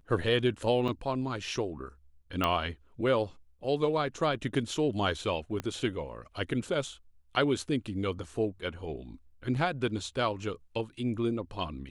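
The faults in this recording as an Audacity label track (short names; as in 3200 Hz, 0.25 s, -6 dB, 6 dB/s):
0.880000	0.890000	gap 5.6 ms
2.440000	2.440000	pop -14 dBFS
5.600000	5.600000	pop -20 dBFS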